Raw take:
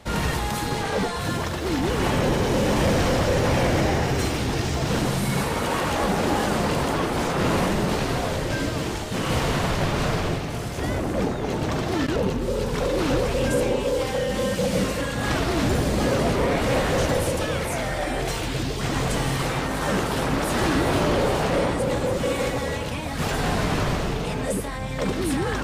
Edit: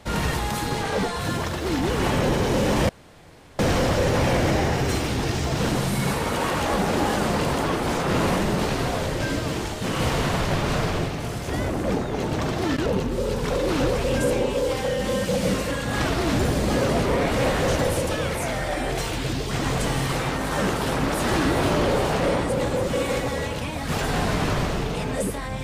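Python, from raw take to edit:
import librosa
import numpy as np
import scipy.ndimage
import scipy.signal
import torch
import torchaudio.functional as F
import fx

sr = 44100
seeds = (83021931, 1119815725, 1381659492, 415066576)

y = fx.edit(x, sr, fx.insert_room_tone(at_s=2.89, length_s=0.7), tone=tone)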